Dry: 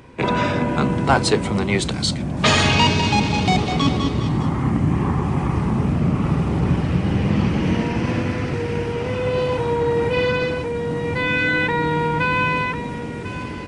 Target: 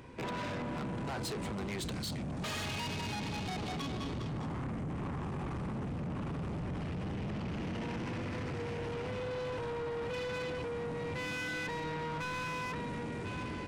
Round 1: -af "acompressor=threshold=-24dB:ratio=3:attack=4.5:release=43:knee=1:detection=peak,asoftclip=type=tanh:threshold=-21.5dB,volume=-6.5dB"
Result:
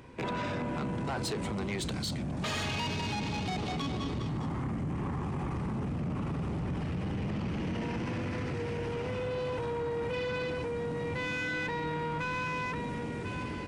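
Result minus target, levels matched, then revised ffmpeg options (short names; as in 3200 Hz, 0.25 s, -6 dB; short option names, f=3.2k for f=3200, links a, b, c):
soft clip: distortion -7 dB
-af "acompressor=threshold=-24dB:ratio=3:attack=4.5:release=43:knee=1:detection=peak,asoftclip=type=tanh:threshold=-28.5dB,volume=-6.5dB"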